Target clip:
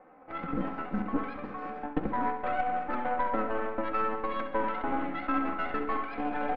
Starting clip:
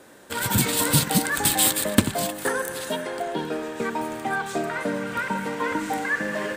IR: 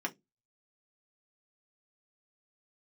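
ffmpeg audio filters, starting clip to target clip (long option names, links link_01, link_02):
-filter_complex "[0:a]equalizer=frequency=300:width_type=o:width=0.26:gain=-4,acrusher=bits=4:mode=log:mix=0:aa=0.000001,areverse,acompressor=threshold=-29dB:ratio=8,areverse,asetrate=62367,aresample=44100,atempo=0.707107,lowpass=frequency=1500:width=0.5412,lowpass=frequency=1500:width=1.3066,aeval=exprs='0.112*(cos(1*acos(clip(val(0)/0.112,-1,1)))-cos(1*PI/2))+0.0251*(cos(4*acos(clip(val(0)/0.112,-1,1)))-cos(4*PI/2))':channel_layout=same,aecho=1:1:3.9:0.69,asplit=2[link_01][link_02];[link_02]aecho=0:1:66|132|198|264|330|396|462:0.282|0.166|0.0981|0.0579|0.0342|0.0201|0.0119[link_03];[link_01][link_03]amix=inputs=2:normalize=0,dynaudnorm=framelen=180:gausssize=3:maxgain=6.5dB,volume=-6dB"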